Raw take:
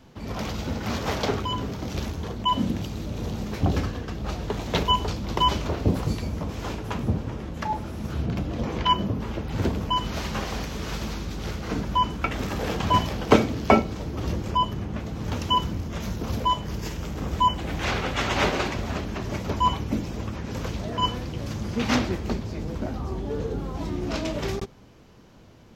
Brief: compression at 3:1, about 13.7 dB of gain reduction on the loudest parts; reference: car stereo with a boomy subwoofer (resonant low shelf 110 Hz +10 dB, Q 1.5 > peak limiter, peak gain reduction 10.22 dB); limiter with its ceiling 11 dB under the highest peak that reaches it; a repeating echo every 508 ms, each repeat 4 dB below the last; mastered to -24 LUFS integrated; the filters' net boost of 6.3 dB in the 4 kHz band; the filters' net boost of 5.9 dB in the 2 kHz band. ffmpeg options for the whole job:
-af "equalizer=f=2000:t=o:g=5.5,equalizer=f=4000:t=o:g=6.5,acompressor=threshold=0.0355:ratio=3,alimiter=limit=0.075:level=0:latency=1,lowshelf=f=110:t=q:w=1.5:g=10,aecho=1:1:508|1016|1524|2032|2540|3048|3556|4064|4572:0.631|0.398|0.25|0.158|0.0994|0.0626|0.0394|0.0249|0.0157,volume=2,alimiter=limit=0.188:level=0:latency=1"

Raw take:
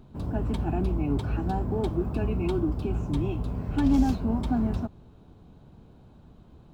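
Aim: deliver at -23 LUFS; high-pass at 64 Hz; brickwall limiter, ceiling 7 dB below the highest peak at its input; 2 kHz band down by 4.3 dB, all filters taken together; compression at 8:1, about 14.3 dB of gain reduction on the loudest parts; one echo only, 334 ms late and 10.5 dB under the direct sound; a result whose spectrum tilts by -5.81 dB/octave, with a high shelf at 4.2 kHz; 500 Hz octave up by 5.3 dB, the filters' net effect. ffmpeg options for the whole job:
-af "highpass=64,equalizer=f=500:t=o:g=8,equalizer=f=2000:t=o:g=-6,highshelf=f=4200:g=-4.5,acompressor=threshold=0.0251:ratio=8,alimiter=level_in=2:limit=0.0631:level=0:latency=1,volume=0.501,aecho=1:1:334:0.299,volume=5.96"

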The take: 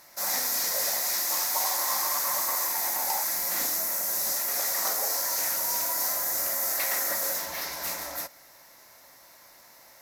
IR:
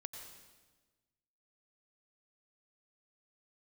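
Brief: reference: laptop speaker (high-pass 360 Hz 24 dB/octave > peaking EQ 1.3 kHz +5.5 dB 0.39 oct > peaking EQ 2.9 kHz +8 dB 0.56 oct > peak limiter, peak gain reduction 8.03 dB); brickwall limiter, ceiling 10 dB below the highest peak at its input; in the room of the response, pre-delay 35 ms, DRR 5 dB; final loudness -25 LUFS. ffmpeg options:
-filter_complex "[0:a]alimiter=limit=0.0631:level=0:latency=1,asplit=2[s0][s1];[1:a]atrim=start_sample=2205,adelay=35[s2];[s1][s2]afir=irnorm=-1:irlink=0,volume=0.841[s3];[s0][s3]amix=inputs=2:normalize=0,highpass=f=360:w=0.5412,highpass=f=360:w=1.3066,equalizer=f=1300:t=o:w=0.39:g=5.5,equalizer=f=2900:t=o:w=0.56:g=8,volume=2.82,alimiter=limit=0.126:level=0:latency=1"

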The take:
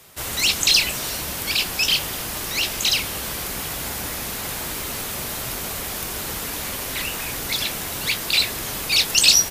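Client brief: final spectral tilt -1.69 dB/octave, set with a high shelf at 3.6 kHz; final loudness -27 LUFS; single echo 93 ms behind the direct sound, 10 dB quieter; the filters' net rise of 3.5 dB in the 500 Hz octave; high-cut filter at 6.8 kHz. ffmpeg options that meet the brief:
-af "lowpass=6800,equalizer=f=500:t=o:g=4.5,highshelf=f=3600:g=-6,aecho=1:1:93:0.316,volume=0.794"

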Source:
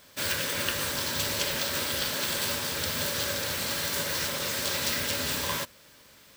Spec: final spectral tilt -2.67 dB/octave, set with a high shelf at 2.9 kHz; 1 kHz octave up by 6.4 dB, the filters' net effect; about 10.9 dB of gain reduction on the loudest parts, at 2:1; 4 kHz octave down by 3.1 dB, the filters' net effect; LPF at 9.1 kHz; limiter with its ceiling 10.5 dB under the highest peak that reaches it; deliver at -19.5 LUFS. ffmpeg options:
-af "lowpass=9100,equalizer=f=1000:t=o:g=7.5,highshelf=f=2900:g=4.5,equalizer=f=4000:t=o:g=-8,acompressor=threshold=0.00562:ratio=2,volume=11.2,alimiter=limit=0.282:level=0:latency=1"

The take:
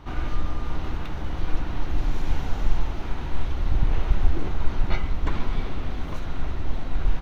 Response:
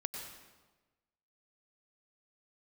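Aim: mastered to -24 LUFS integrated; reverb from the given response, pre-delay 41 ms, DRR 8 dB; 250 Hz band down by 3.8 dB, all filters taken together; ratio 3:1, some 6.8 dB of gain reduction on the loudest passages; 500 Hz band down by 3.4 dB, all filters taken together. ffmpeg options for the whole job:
-filter_complex "[0:a]equalizer=f=250:t=o:g=-4.5,equalizer=f=500:t=o:g=-3,acompressor=threshold=0.112:ratio=3,asplit=2[s0][s1];[1:a]atrim=start_sample=2205,adelay=41[s2];[s1][s2]afir=irnorm=-1:irlink=0,volume=0.376[s3];[s0][s3]amix=inputs=2:normalize=0,volume=2.99"

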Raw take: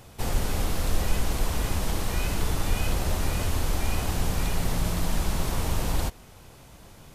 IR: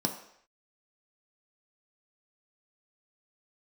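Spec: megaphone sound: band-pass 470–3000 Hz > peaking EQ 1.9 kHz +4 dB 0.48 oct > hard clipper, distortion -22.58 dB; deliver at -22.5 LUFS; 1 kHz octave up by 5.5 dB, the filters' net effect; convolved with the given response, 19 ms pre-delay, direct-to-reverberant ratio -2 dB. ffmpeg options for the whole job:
-filter_complex "[0:a]equalizer=f=1000:t=o:g=7,asplit=2[s0][s1];[1:a]atrim=start_sample=2205,adelay=19[s2];[s1][s2]afir=irnorm=-1:irlink=0,volume=0.631[s3];[s0][s3]amix=inputs=2:normalize=0,highpass=470,lowpass=3000,equalizer=f=1900:t=o:w=0.48:g=4,asoftclip=type=hard:threshold=0.1,volume=1.78"

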